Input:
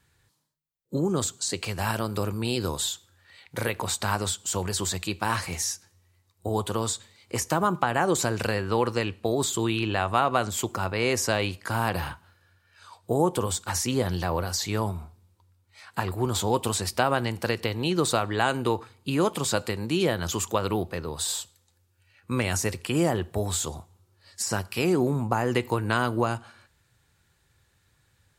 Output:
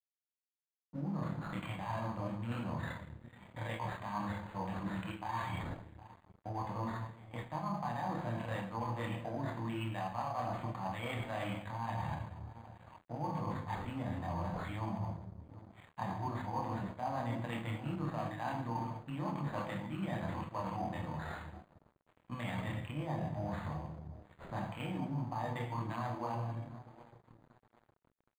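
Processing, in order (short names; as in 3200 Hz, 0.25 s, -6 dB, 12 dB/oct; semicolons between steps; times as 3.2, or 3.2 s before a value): HPF 190 Hz 6 dB/oct; air absorption 210 m; on a send at -1.5 dB: reverb RT60 0.85 s, pre-delay 7 ms; on the sum: chorus voices 4, 0.69 Hz, delay 26 ms, depth 1.2 ms; fixed phaser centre 2100 Hz, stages 8; dark delay 0.764 s, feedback 52%, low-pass 820 Hz, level -20 dB; reverse; compressor 6:1, threshold -36 dBFS, peak gain reduction 13 dB; reverse; crossover distortion -55 dBFS; decimation joined by straight lines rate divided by 8×; gain +2.5 dB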